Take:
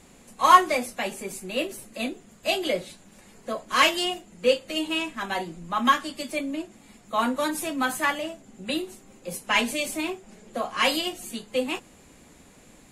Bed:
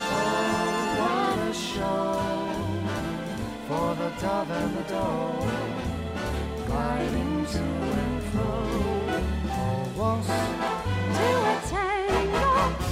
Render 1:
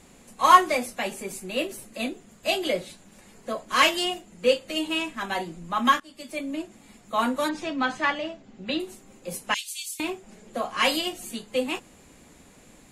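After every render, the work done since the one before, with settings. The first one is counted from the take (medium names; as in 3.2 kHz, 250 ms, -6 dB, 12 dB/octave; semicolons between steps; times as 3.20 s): 6.00–6.57 s: fade in, from -22 dB; 7.49–8.80 s: low-pass 5.5 kHz 24 dB/octave; 9.54–10.00 s: inverse Chebyshev high-pass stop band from 600 Hz, stop band 80 dB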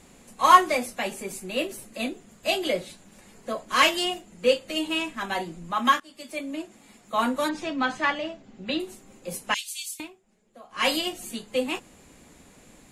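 5.71–7.14 s: bass shelf 150 Hz -9 dB; 9.90–10.88 s: dip -18.5 dB, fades 0.19 s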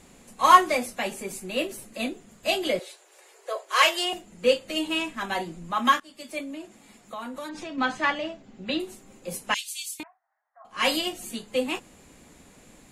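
2.79–4.13 s: steep high-pass 360 Hz 72 dB/octave; 6.43–7.78 s: compression, threshold -33 dBFS; 10.03–10.65 s: Chebyshev band-pass 690–1900 Hz, order 4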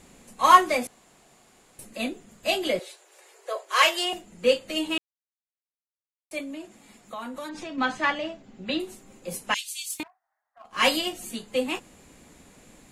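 0.87–1.79 s: room tone; 4.98–6.31 s: mute; 9.90–10.89 s: waveshaping leveller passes 1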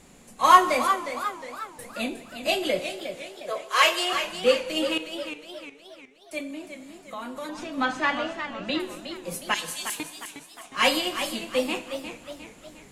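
plate-style reverb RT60 1.4 s, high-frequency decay 0.95×, DRR 11 dB; modulated delay 360 ms, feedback 48%, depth 119 cents, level -9 dB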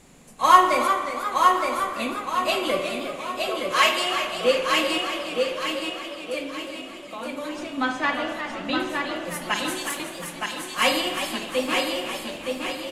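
on a send: feedback delay 918 ms, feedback 42%, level -4 dB; on the sum: spring tank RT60 1.4 s, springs 46 ms, chirp 35 ms, DRR 6 dB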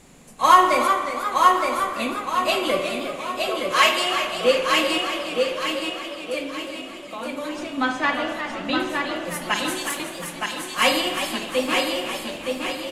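trim +2 dB; peak limiter -2 dBFS, peak gain reduction 2.5 dB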